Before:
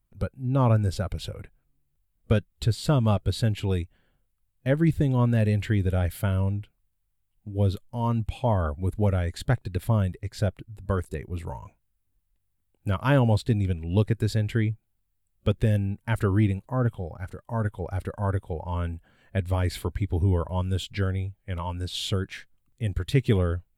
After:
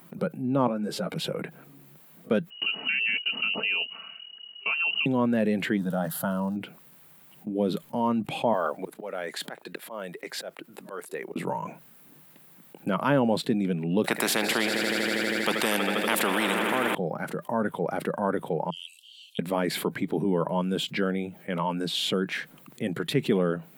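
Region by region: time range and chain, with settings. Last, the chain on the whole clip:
0:00.67–0:01.16: downward compressor 4 to 1, threshold −28 dBFS + string-ensemble chorus
0:02.50–0:05.06: comb filter 4.5 ms, depth 53% + downward compressor 4 to 1, threshold −27 dBFS + voice inversion scrambler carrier 2,900 Hz
0:05.76–0:06.55: surface crackle 470 per second −47 dBFS + phaser with its sweep stopped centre 950 Hz, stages 4
0:08.53–0:11.36: volume swells 554 ms + high-pass filter 510 Hz + noise that follows the level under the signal 33 dB
0:14.04–0:16.95: echo that builds up and dies away 80 ms, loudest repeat 5, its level −18 dB + every bin compressed towards the loudest bin 4 to 1
0:18.70–0:19.39: Butterworth high-pass 2,900 Hz 96 dB per octave + high-frequency loss of the air 59 metres
whole clip: elliptic high-pass filter 160 Hz, stop band 50 dB; parametric band 6,900 Hz −8 dB 2 octaves; envelope flattener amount 50%

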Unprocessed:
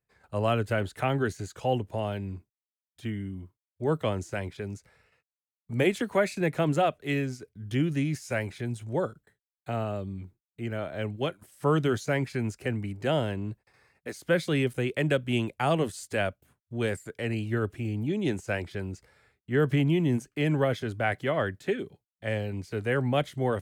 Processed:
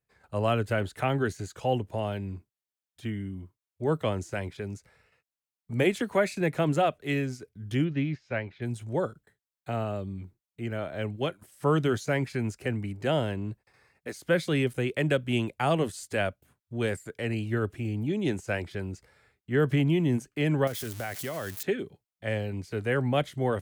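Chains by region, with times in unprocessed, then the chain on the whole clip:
0:07.84–0:08.62: low-pass filter 4,100 Hz 24 dB per octave + expander for the loud parts, over −40 dBFS
0:20.67–0:21.63: spike at every zero crossing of −25 dBFS + downward compressor 4 to 1, threshold −31 dBFS
whole clip: no processing

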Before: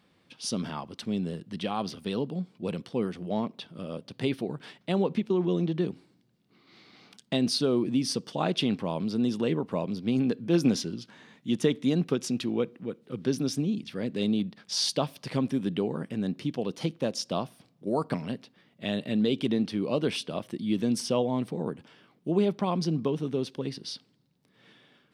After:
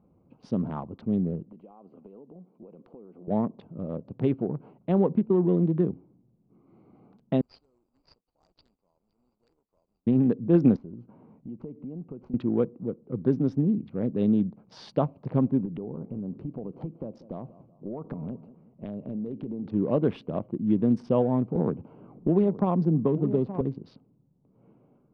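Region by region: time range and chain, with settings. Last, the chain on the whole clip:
0:01.46–0:03.28: high-pass filter 310 Hz + downward compressor 12 to 1, threshold −46 dBFS
0:07.41–0:10.07: bad sample-rate conversion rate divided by 6×, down none, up zero stuff + resonant band-pass 4,800 Hz, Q 19 + floating-point word with a short mantissa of 2 bits
0:10.76–0:12.34: downward compressor 4 to 1, threshold −42 dBFS + bad sample-rate conversion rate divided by 4×, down none, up hold
0:15.65–0:19.66: downward compressor 5 to 1, threshold −35 dBFS + repeating echo 189 ms, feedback 40%, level −16.5 dB
0:21.55–0:23.61: single-tap delay 871 ms −14 dB + multiband upward and downward compressor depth 70%
whole clip: adaptive Wiener filter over 25 samples; low-pass filter 1,200 Hz 12 dB per octave; low-shelf EQ 81 Hz +11 dB; level +3 dB

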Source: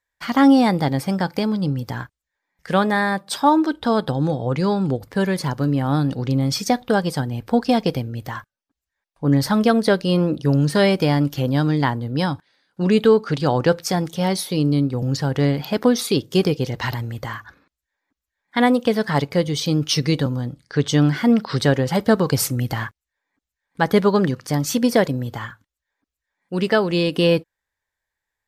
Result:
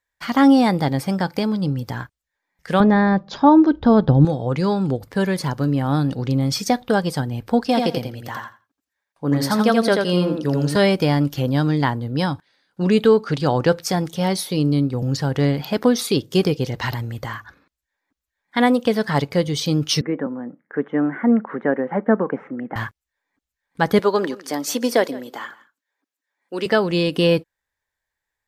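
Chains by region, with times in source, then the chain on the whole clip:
0:02.80–0:04.25: linear-phase brick-wall low-pass 7,200 Hz + spectral tilt −3.5 dB per octave
0:07.67–0:10.76: high-pass filter 220 Hz 6 dB per octave + repeating echo 84 ms, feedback 17%, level −4 dB
0:20.01–0:22.76: elliptic band-pass filter 210–1,900 Hz + high-frequency loss of the air 200 metres
0:23.99–0:26.66: high-pass filter 270 Hz 24 dB per octave + single-tap delay 165 ms −20 dB
whole clip: no processing

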